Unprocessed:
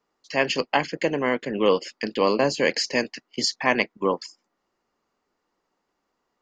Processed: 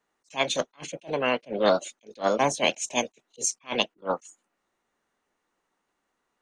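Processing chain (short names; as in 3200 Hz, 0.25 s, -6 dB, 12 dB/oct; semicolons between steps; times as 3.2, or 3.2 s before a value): formant shift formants +5 st; attack slew limiter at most 330 dB/s; gain -1.5 dB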